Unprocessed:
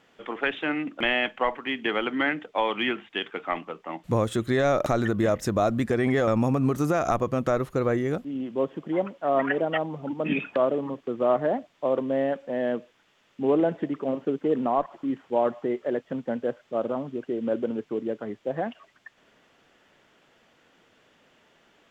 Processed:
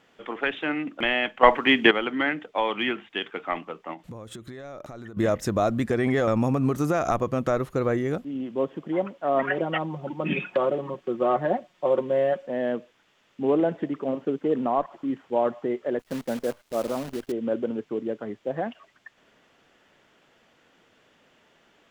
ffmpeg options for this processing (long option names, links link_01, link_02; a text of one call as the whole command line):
ffmpeg -i in.wav -filter_complex "[0:a]asettb=1/sr,asplit=3[link_01][link_02][link_03];[link_01]atrim=end=3.934[link_04];[link_02]atrim=start=3.93:end=5.17,asetpts=PTS-STARTPTS,afade=type=in:duration=0.004:curve=qsin,afade=type=out:start_time=1.236:duration=0.004:curve=qsin,acompressor=threshold=-36dB:ratio=12:attack=3.2:release=140:knee=1:detection=peak[link_05];[link_03]atrim=start=5.166[link_06];[link_04][link_05]acrossfade=duration=0.004:curve1=hsin:curve2=qsin[link_07];[link_07][link_06]acrossfade=duration=0.004:curve1=qsin:curve2=hsin,asettb=1/sr,asplit=3[link_08][link_09][link_10];[link_08]atrim=end=9.424[link_11];[link_09]atrim=start=9.42:end=12.47,asetpts=PTS-STARTPTS,afade=type=in:duration=0.004:curve=qsin,afade=type=out:start_time=3.046:duration=0.004:curve=qsin,aecho=1:1:5.5:0.65,atrim=end_sample=134505[link_12];[link_10]atrim=start=12.466[link_13];[link_11][link_12]acrossfade=duration=0.004:curve1=hsin:curve2=qsin[link_14];[link_14][link_13]acrossfade=duration=0.004:curve1=qsin:curve2=hsin,asettb=1/sr,asplit=3[link_15][link_16][link_17];[link_15]atrim=end=15.994[link_18];[link_16]atrim=start=15.99:end=17.32,asetpts=PTS-STARTPTS,afade=type=in:duration=0.004:curve=qsin,afade=type=out:start_time=1.326:duration=0.004:curve=qsin,acrusher=bits=7:dc=4:mix=0:aa=0.000001[link_19];[link_17]atrim=start=17.316[link_20];[link_18][link_19]acrossfade=duration=0.004:curve1=hsin:curve2=qsin[link_21];[link_21][link_20]acrossfade=duration=0.004:curve1=qsin:curve2=hsin,asplit=3[link_22][link_23][link_24];[link_22]atrim=end=1.432[link_25];[link_23]atrim=start=1.428:end=1.912,asetpts=PTS-STARTPTS,volume=10.5dB[link_26];[link_24]atrim=start=1.908[link_27];[link_25][link_26]acrossfade=duration=0.004:curve1=hsin:curve2=hsin[link_28];[link_28][link_27]acrossfade=duration=0.004:curve1=hsin:curve2=hsin" out.wav